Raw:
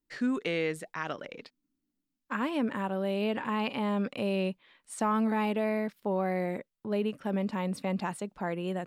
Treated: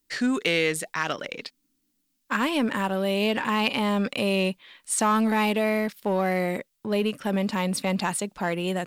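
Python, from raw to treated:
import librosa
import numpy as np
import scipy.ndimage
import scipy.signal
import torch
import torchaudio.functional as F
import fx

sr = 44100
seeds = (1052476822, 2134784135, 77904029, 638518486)

p1 = np.clip(x, -10.0 ** (-32.0 / 20.0), 10.0 ** (-32.0 / 20.0))
p2 = x + F.gain(torch.from_numpy(p1), -11.0).numpy()
p3 = fx.high_shelf(p2, sr, hz=2300.0, db=11.5)
y = F.gain(torch.from_numpy(p3), 3.5).numpy()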